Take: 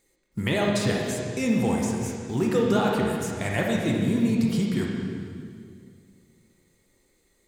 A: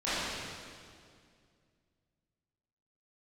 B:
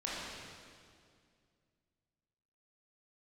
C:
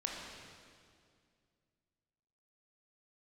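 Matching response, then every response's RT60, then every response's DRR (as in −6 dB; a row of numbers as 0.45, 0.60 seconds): C; 2.2, 2.2, 2.2 seconds; −15.0, −7.5, −1.5 decibels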